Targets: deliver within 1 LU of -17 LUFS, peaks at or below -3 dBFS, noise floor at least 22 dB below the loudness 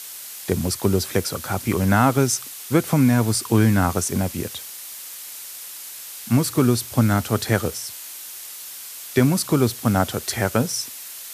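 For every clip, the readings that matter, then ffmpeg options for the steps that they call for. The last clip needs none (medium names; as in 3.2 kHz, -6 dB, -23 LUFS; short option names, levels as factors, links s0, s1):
noise floor -37 dBFS; noise floor target -43 dBFS; loudness -21.0 LUFS; peak level -3.0 dBFS; loudness target -17.0 LUFS
-> -af "afftdn=nr=6:nf=-37"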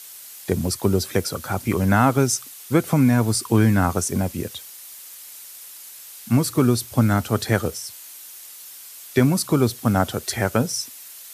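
noise floor -41 dBFS; noise floor target -43 dBFS
-> -af "afftdn=nr=6:nf=-41"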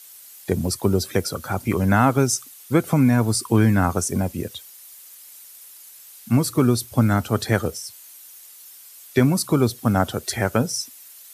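noise floor -45 dBFS; loudness -21.0 LUFS; peak level -3.0 dBFS; loudness target -17.0 LUFS
-> -af "volume=1.58,alimiter=limit=0.708:level=0:latency=1"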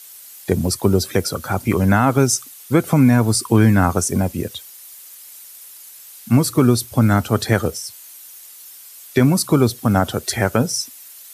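loudness -17.5 LUFS; peak level -3.0 dBFS; noise floor -41 dBFS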